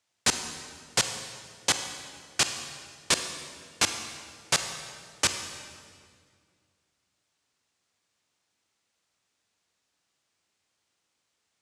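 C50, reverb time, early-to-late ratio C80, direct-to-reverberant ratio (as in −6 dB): 7.5 dB, 2.0 s, 8.5 dB, 7.0 dB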